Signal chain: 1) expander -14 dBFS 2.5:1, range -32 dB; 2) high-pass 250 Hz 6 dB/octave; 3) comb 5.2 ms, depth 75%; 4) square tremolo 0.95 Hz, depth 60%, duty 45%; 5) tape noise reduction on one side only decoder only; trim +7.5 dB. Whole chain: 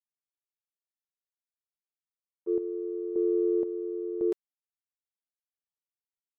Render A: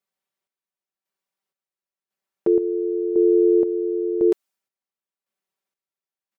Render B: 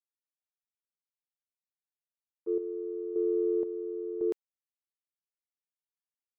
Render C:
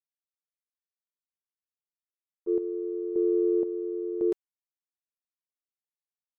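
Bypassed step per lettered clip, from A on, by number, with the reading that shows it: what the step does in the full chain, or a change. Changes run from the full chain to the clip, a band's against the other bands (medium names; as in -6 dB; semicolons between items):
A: 1, loudness change +10.0 LU; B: 3, loudness change -2.5 LU; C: 2, loudness change +1.5 LU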